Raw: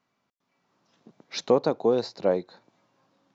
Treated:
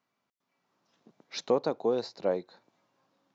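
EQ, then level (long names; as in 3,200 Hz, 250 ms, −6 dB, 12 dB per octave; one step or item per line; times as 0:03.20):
low-shelf EQ 180 Hz −5.5 dB
−4.5 dB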